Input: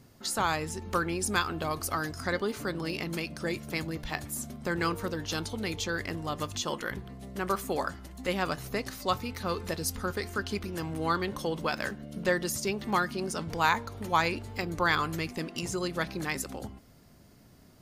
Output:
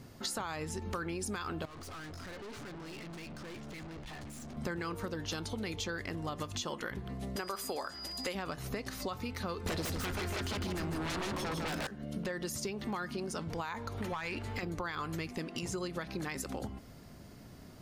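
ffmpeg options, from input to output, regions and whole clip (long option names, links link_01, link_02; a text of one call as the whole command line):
ffmpeg -i in.wav -filter_complex "[0:a]asettb=1/sr,asplit=3[link_01][link_02][link_03];[link_01]atrim=end=1.654[link_04];[link_02]atrim=start=1.65:end=4.57,asetpts=PTS-STARTPTS,afade=type=in:duration=0.004:curve=qsin,afade=type=out:start_time=2.916:duration=0.004:curve=qsin,lowpass=6800,acompressor=threshold=-34dB:ratio=2:attack=3.2:release=140:knee=1:detection=peak,aeval=exprs='(tanh(282*val(0)+0.35)-tanh(0.35))/282':channel_layout=same[link_05];[link_03]atrim=start=4.566[link_06];[link_04][link_05]acrossfade=duration=0.004:curve1=hsin:curve2=qsin[link_07];[link_07][link_06]acrossfade=duration=0.004:curve1=qsin:curve2=hsin,asettb=1/sr,asplit=3[link_08][link_09][link_10];[link_08]atrim=end=7.364[link_11];[link_09]atrim=start=7.36:end=8.35,asetpts=PTS-STARTPTS,afade=type=in:duration=0.004:curve=qsin,afade=type=out:start_time=0.986:duration=0.004:curve=qsin,bass=frequency=250:gain=-12,treble=frequency=4000:gain=6,aeval=exprs='val(0)+0.00708*sin(2*PI*4900*n/s)':channel_layout=same[link_12];[link_10]atrim=start=8.346[link_13];[link_11][link_12]acrossfade=duration=0.004:curve1=hsin:curve2=qsin[link_14];[link_14][link_13]acrossfade=duration=0.004:curve1=qsin:curve2=hsin,asettb=1/sr,asplit=3[link_15][link_16][link_17];[link_15]atrim=end=9.664[link_18];[link_16]atrim=start=9.66:end=11.87,asetpts=PTS-STARTPTS,afade=type=in:duration=0.004:curve=qsin,afade=type=out:start_time=2.206:duration=0.004:curve=qsin,aeval=exprs='0.168*sin(PI/2*6.31*val(0)/0.168)':channel_layout=same,aecho=1:1:153:0.668,atrim=end_sample=97461[link_19];[link_17]atrim=start=11.866[link_20];[link_18][link_19]acrossfade=duration=0.004:curve1=hsin:curve2=qsin[link_21];[link_21][link_20]acrossfade=duration=0.004:curve1=qsin:curve2=hsin,asettb=1/sr,asplit=3[link_22][link_23][link_24];[link_22]atrim=end=13.984[link_25];[link_23]atrim=start=13.98:end=14.63,asetpts=PTS-STARTPTS,afade=type=in:duration=0.004:curve=qsin,afade=type=out:start_time=0.646:duration=0.004:curve=qsin,equalizer=frequency=1900:width_type=o:width=2:gain=7,acompressor=threshold=-29dB:ratio=6:attack=3.2:release=140:knee=1:detection=peak,aeval=exprs='clip(val(0),-1,0.0335)':channel_layout=same[link_26];[link_24]atrim=start=14.626[link_27];[link_25][link_26]acrossfade=duration=0.004:curve1=hsin:curve2=qsin[link_28];[link_28][link_27]acrossfade=duration=0.004:curve1=qsin:curve2=hsin,highshelf=frequency=7100:gain=-5.5,alimiter=limit=-22dB:level=0:latency=1:release=87,acompressor=threshold=-40dB:ratio=6,volume=5dB" out.wav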